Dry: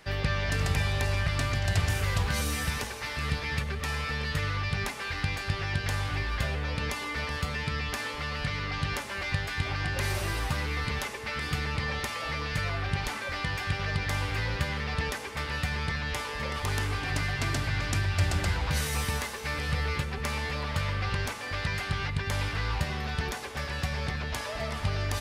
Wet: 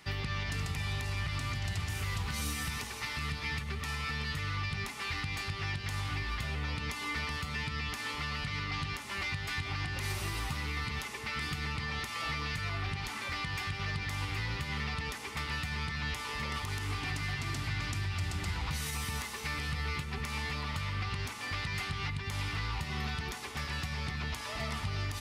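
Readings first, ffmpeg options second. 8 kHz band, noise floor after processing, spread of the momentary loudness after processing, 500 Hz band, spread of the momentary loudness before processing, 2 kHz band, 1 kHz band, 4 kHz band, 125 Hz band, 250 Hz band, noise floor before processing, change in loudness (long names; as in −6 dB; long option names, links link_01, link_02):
−4.5 dB, −41 dBFS, 2 LU, −10.0 dB, 5 LU, −4.5 dB, −4.5 dB, −3.0 dB, −6.0 dB, −5.0 dB, −37 dBFS, −5.0 dB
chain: -af "highpass=frequency=63:poles=1,equalizer=frequency=550:width_type=o:width=0.7:gain=-11.5,bandreject=frequency=1600:width=8.3,alimiter=level_in=1.5dB:limit=-24dB:level=0:latency=1:release=166,volume=-1.5dB"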